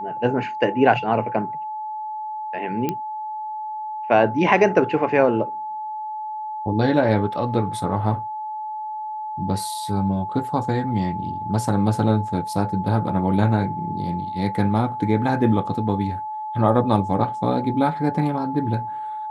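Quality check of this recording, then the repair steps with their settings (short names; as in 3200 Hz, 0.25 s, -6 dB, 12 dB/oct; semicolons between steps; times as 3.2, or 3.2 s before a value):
tone 860 Hz -27 dBFS
2.89 pop -10 dBFS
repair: de-click; notch 860 Hz, Q 30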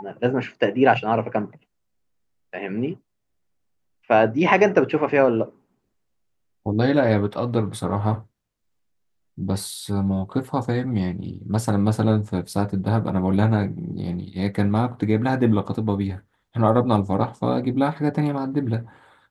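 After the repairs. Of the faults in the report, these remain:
none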